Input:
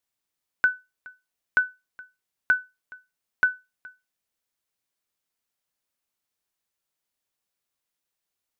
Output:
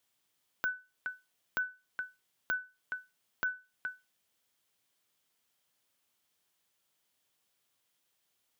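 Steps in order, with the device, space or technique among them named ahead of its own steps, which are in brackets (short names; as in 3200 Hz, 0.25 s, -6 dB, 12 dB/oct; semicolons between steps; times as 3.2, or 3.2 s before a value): broadcast voice chain (HPF 71 Hz 24 dB/oct; de-esser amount 90%; compressor 3:1, threshold -38 dBFS, peak gain reduction 13 dB; bell 3200 Hz +5 dB 0.26 oct; limiter -22.5 dBFS, peak gain reduction 6.5 dB); gain +6 dB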